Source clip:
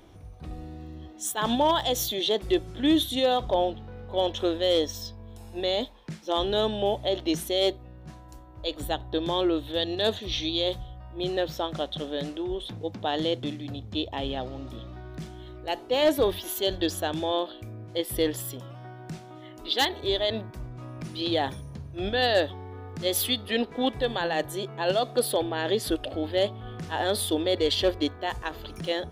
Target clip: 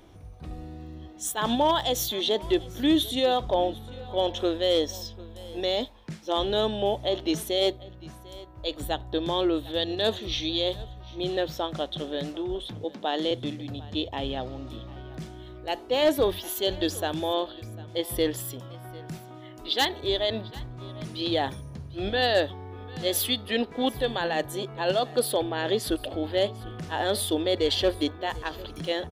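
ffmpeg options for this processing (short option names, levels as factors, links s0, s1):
-filter_complex "[0:a]asettb=1/sr,asplit=3[s0][s1][s2];[s0]atrim=end=12.844[s3];[s1]atrim=start=12.84:end=13.31,asetpts=PTS-STARTPTS,afade=t=in:d=0.004:c=qsin,afade=t=out:st=0.466:d=0.004:c=qsin,highpass=f=200:w=0.5412,highpass=f=200:w=1.3066[s4];[s2]atrim=start=13.306[s5];[s3][s4]acrossfade=d=0.004:c1=hsin:c2=qsin[s6];[s6][s5]acrossfade=d=0.004:c1=qsin:c2=hsin,asplit=2[s7][s8];[s8]aecho=0:1:747:0.0944[s9];[s7][s9]amix=inputs=2:normalize=0"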